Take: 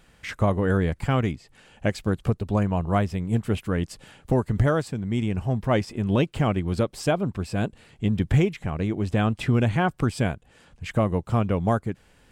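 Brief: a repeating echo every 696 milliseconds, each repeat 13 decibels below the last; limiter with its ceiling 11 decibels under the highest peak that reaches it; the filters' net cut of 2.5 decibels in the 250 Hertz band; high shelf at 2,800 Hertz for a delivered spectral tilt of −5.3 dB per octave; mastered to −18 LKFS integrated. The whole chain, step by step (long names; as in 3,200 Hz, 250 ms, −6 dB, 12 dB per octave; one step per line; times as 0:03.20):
parametric band 250 Hz −3.5 dB
high-shelf EQ 2,800 Hz +9 dB
brickwall limiter −19.5 dBFS
repeating echo 696 ms, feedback 22%, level −13 dB
level +12.5 dB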